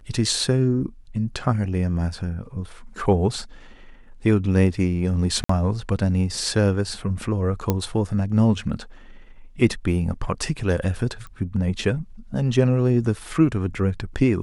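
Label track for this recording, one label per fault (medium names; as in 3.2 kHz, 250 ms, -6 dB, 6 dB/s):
5.440000	5.490000	dropout 54 ms
7.700000	7.700000	pop -7 dBFS
11.270000	11.270000	pop -26 dBFS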